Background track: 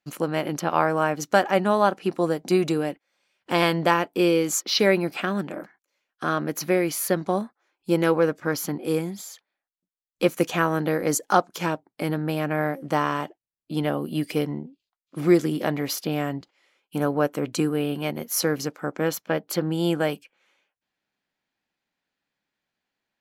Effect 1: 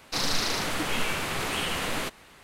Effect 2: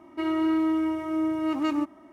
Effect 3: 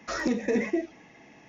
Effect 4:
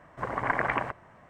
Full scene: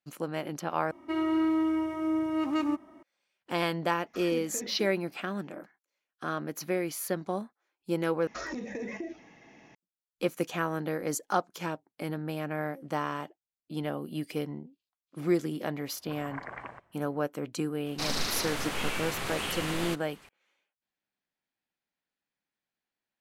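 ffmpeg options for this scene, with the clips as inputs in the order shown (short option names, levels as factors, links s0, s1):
-filter_complex "[3:a]asplit=2[s0][s1];[0:a]volume=0.376[s2];[s1]acompressor=threshold=0.0282:ratio=6:attack=3.2:release=140:knee=1:detection=peak[s3];[s2]asplit=3[s4][s5][s6];[s4]atrim=end=0.914[s7];[2:a]atrim=end=2.12,asetpts=PTS-STARTPTS,volume=0.75[s8];[s5]atrim=start=3.026:end=8.274[s9];[s3]atrim=end=1.48,asetpts=PTS-STARTPTS,volume=0.75[s10];[s6]atrim=start=9.746[s11];[s0]atrim=end=1.48,asetpts=PTS-STARTPTS,volume=0.178,afade=t=in:d=0.004:c=hsin,afade=t=out:st=1.476:d=0.004:c=hsin,adelay=4060[s12];[4:a]atrim=end=1.29,asetpts=PTS-STARTPTS,volume=0.2,afade=t=in:d=0.004:c=hsin,afade=t=out:st=1.286:d=0.004:c=hsin,adelay=700308S[s13];[1:a]atrim=end=2.43,asetpts=PTS-STARTPTS,volume=0.596,afade=t=in:d=0.004:c=hsin,afade=t=out:st=2.426:d=0.004:c=hsin,adelay=17860[s14];[s7][s8]acrossfade=d=0.004:c1=hsin:c2=hsin[s15];[s15][s9]acrossfade=d=0.004:c1=hsin:c2=hsin[s16];[s16][s10]acrossfade=d=0.004:c1=hsin:c2=hsin[s17];[s17][s11]acrossfade=d=0.004:c1=hsin:c2=hsin[s18];[s18][s12][s13][s14]amix=inputs=4:normalize=0"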